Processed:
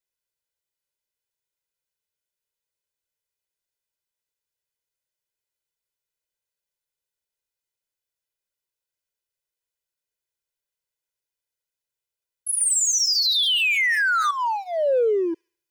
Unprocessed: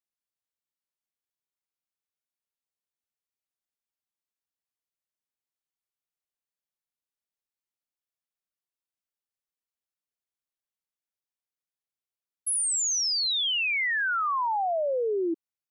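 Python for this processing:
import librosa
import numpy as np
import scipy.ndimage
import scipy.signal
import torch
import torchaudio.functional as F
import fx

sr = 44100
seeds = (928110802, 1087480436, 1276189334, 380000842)

p1 = np.clip(x, -10.0 ** (-34.5 / 20.0), 10.0 ** (-34.5 / 20.0))
p2 = x + (p1 * librosa.db_to_amplitude(-8.0))
p3 = p2 + 0.9 * np.pad(p2, (int(2.0 * sr / 1000.0), 0))[:len(p2)]
p4 = p3 + fx.echo_wet_highpass(p3, sr, ms=71, feedback_pct=47, hz=3700.0, wet_db=-10.0, dry=0)
p5 = fx.rider(p4, sr, range_db=10, speed_s=2.0)
p6 = fx.peak_eq(p5, sr, hz=1100.0, db=-8.5, octaves=0.28)
y = fx.env_flatten(p6, sr, amount_pct=100, at=(12.6, 14.31))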